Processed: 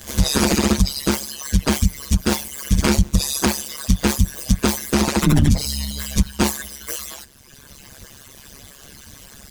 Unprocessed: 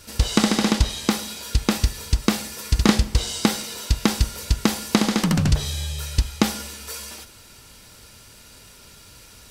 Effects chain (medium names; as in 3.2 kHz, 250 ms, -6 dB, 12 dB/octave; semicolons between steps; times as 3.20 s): frequency axis rescaled in octaves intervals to 109%; reverb removal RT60 1.6 s; AM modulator 140 Hz, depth 100%; loudness maximiser +19 dB; trim -3.5 dB